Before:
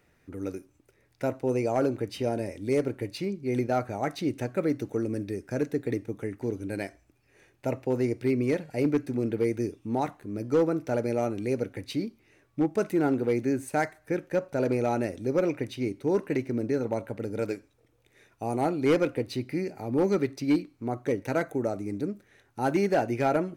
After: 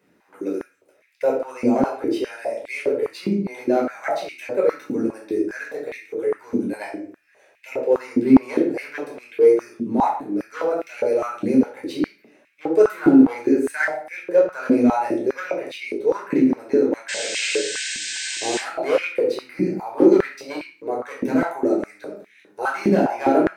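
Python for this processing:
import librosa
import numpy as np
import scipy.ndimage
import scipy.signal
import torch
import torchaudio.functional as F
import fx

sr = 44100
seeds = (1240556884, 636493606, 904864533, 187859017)

y = fx.spec_paint(x, sr, seeds[0], shape='noise', start_s=17.08, length_s=1.5, low_hz=1500.0, high_hz=8800.0, level_db=-31.0)
y = fx.room_shoebox(y, sr, seeds[1], volume_m3=680.0, walls='furnished', distance_m=5.2)
y = fx.filter_held_highpass(y, sr, hz=4.9, low_hz=240.0, high_hz=2300.0)
y = y * librosa.db_to_amplitude(-4.0)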